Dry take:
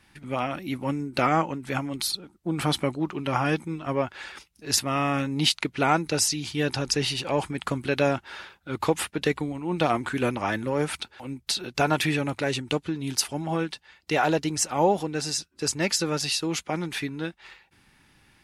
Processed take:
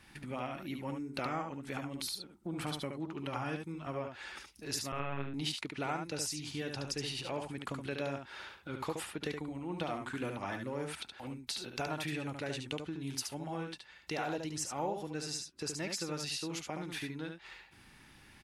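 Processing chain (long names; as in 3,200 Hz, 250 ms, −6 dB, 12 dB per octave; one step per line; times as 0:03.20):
downward compressor 2 to 1, threshold −47 dBFS, peak gain reduction 17 dB
0:04.92–0:05.34: linear-prediction vocoder at 8 kHz pitch kept
on a send: single-tap delay 72 ms −5.5 dB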